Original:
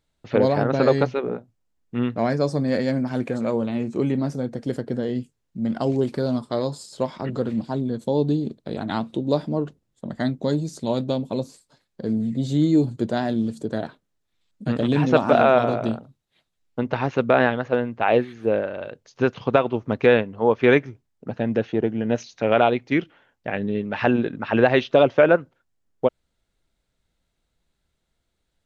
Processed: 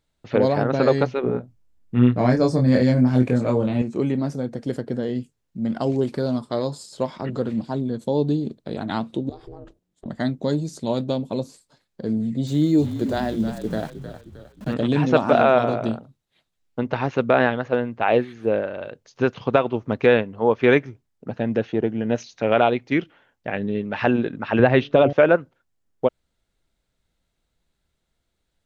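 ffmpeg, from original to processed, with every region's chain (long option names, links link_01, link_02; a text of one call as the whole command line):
ffmpeg -i in.wav -filter_complex "[0:a]asettb=1/sr,asplit=3[link_01][link_02][link_03];[link_01]atrim=end=1.214[link_04];[link_02]atrim=start=1.21:end=3.82,asetpts=PTS-STARTPTS,afade=type=in:duration=0.004:curve=qsin,afade=type=out:start_time=2.606:duration=0.004:curve=qsin,lowshelf=frequency=200:gain=10,asplit=2[link_05][link_06];[link_06]adelay=24,volume=-3dB[link_07];[link_05][link_07]amix=inputs=2:normalize=0,atrim=end_sample=115101[link_08];[link_03]atrim=start=3.816[link_09];[link_04][link_08]acrossfade=duration=0.004:curve1=hsin:curve2=qsin[link_10];[link_10][link_09]acrossfade=duration=0.004:curve1=qsin:curve2=hsin,asettb=1/sr,asplit=3[link_11][link_12][link_13];[link_11]atrim=end=9.294[link_14];[link_12]atrim=start=9.29:end=10.06,asetpts=PTS-STARTPTS,afade=type=in:duration=0.004:curve=qsin,afade=type=out:start_time=0.766:duration=0.004:curve=qsin,acompressor=threshold=-32dB:ratio=12:attack=3.2:release=140:knee=1:detection=peak,aeval=exprs='val(0)*sin(2*PI*180*n/s)':channel_layout=same[link_15];[link_13]atrim=start=10.056[link_16];[link_14][link_15]acrossfade=duration=0.004:curve1=hsin:curve2=qsin[link_17];[link_17][link_16]acrossfade=duration=0.004:curve1=qsin:curve2=hsin,asettb=1/sr,asplit=3[link_18][link_19][link_20];[link_18]atrim=end=12.474[link_21];[link_19]atrim=start=12.47:end=14.74,asetpts=PTS-STARTPTS,afade=type=in:duration=0.004:curve=qsin,afade=type=out:start_time=2.266:duration=0.004:curve=qsin,bandreject=frequency=60:width_type=h:width=6,bandreject=frequency=120:width_type=h:width=6,bandreject=frequency=180:width_type=h:width=6,bandreject=frequency=240:width_type=h:width=6,aeval=exprs='val(0)*gte(abs(val(0)),0.01)':channel_layout=same,asplit=6[link_22][link_23][link_24][link_25][link_26][link_27];[link_23]adelay=311,afreqshift=-46,volume=-10.5dB[link_28];[link_24]adelay=622,afreqshift=-92,volume=-17.2dB[link_29];[link_25]adelay=933,afreqshift=-138,volume=-24dB[link_30];[link_26]adelay=1244,afreqshift=-184,volume=-30.7dB[link_31];[link_27]adelay=1555,afreqshift=-230,volume=-37.5dB[link_32];[link_22][link_28][link_29][link_30][link_31][link_32]amix=inputs=6:normalize=0,atrim=end_sample=100107[link_33];[link_20]atrim=start=14.736[link_34];[link_21][link_33]acrossfade=duration=0.004:curve1=hsin:curve2=qsin[link_35];[link_35][link_34]acrossfade=duration=0.004:curve1=qsin:curve2=hsin,asettb=1/sr,asplit=3[link_36][link_37][link_38];[link_36]atrim=end=24.594[link_39];[link_37]atrim=start=24.59:end=25.13,asetpts=PTS-STARTPTS,afade=type=in:duration=0.004:curve=qsin,afade=type=out:start_time=0.536:duration=0.004:curve=qsin,bass=frequency=250:gain=7,treble=frequency=4000:gain=-8,bandreject=frequency=143.5:width_type=h:width=4,bandreject=frequency=287:width_type=h:width=4,bandreject=frequency=430.5:width_type=h:width=4,bandreject=frequency=574:width_type=h:width=4,bandreject=frequency=717.5:width_type=h:width=4[link_40];[link_38]atrim=start=25.126[link_41];[link_39][link_40]acrossfade=duration=0.004:curve1=hsin:curve2=qsin[link_42];[link_42][link_41]acrossfade=duration=0.004:curve1=qsin:curve2=hsin" out.wav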